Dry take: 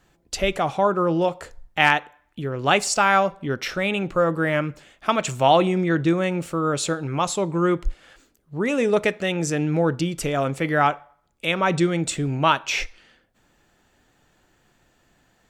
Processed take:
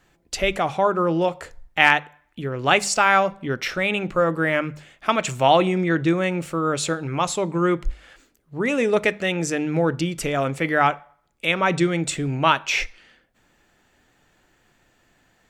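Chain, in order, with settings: bell 2100 Hz +3.5 dB 0.82 oct; notches 50/100/150/200 Hz

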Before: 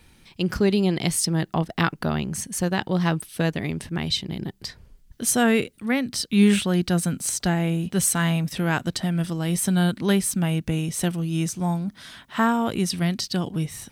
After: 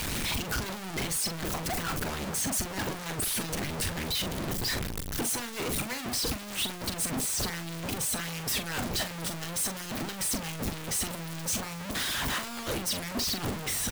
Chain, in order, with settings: infinite clipping; harmonic-percussive split harmonic -13 dB; doubler 42 ms -8.5 dB; gain -4 dB

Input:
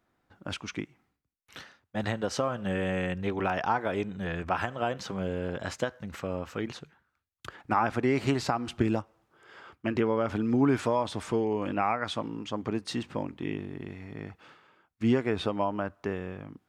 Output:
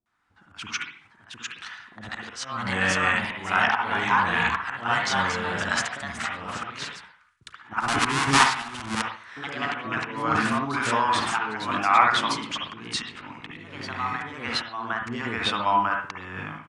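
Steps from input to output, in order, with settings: 7.82–8.96 half-waves squared off; echoes that change speed 0.776 s, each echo +2 st, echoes 2, each echo -6 dB; in parallel at +2 dB: level quantiser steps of 23 dB; on the sum: auto swell 0.342 s; AGC gain up to 11 dB; resonant low shelf 740 Hz -11 dB, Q 1.5; bands offset in time lows, highs 60 ms, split 560 Hz; on a send at -2 dB: reverb, pre-delay 51 ms; on the sum: downsampling 22050 Hz; noise-modulated level, depth 60%; gain +1.5 dB

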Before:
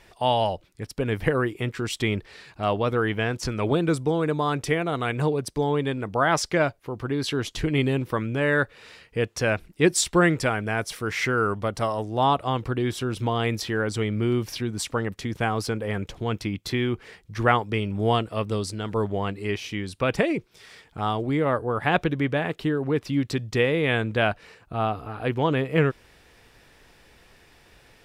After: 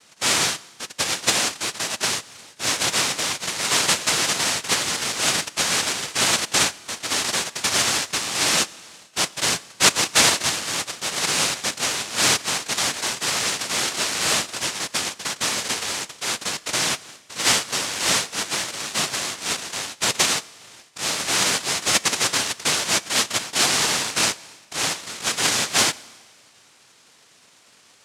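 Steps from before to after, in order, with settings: dynamic EQ 4000 Hz, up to +6 dB, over -49 dBFS, Q 2.4; noise vocoder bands 1; Schroeder reverb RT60 1.5 s, combs from 27 ms, DRR 20 dB; gain +1.5 dB

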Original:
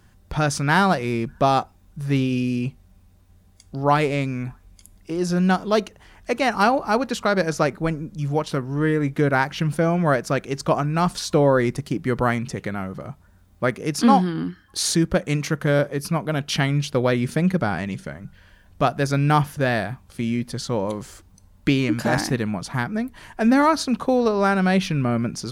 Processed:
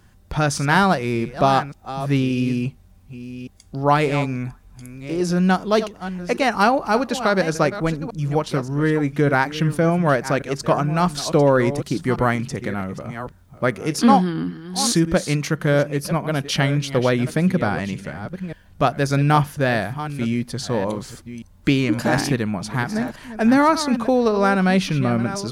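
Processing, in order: reverse delay 0.579 s, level -12 dB; gain +1.5 dB

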